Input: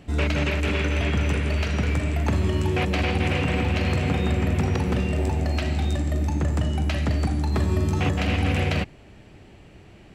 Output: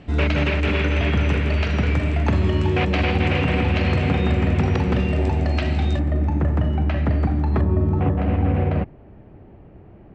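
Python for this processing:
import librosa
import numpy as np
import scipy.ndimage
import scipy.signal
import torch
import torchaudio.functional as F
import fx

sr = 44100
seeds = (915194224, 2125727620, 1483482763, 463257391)

y = fx.lowpass(x, sr, hz=fx.steps((0.0, 4000.0), (5.99, 1800.0), (7.61, 1000.0)), slope=12)
y = F.gain(torch.from_numpy(y), 3.5).numpy()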